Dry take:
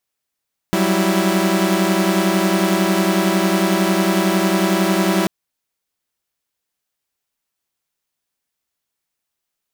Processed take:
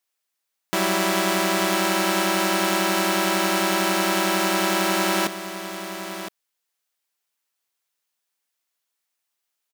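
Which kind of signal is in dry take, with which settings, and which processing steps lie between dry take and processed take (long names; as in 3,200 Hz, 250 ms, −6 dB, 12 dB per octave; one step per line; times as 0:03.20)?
held notes F#3/G3/E4 saw, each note −16.5 dBFS 4.54 s
high-pass filter 650 Hz 6 dB per octave
on a send: single-tap delay 1,014 ms −11 dB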